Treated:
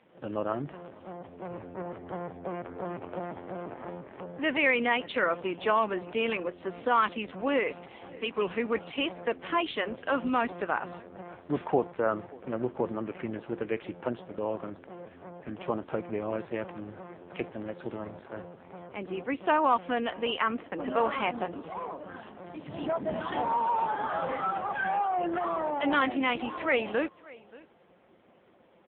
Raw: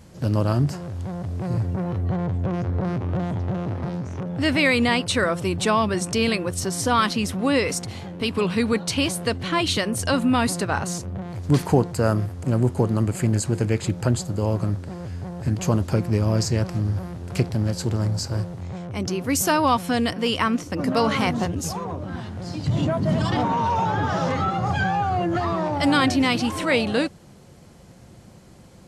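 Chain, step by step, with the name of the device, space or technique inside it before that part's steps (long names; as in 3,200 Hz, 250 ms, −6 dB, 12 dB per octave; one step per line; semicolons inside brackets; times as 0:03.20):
satellite phone (band-pass filter 370–3,200 Hz; single-tap delay 577 ms −22 dB; level −3 dB; AMR narrowband 5.9 kbit/s 8,000 Hz)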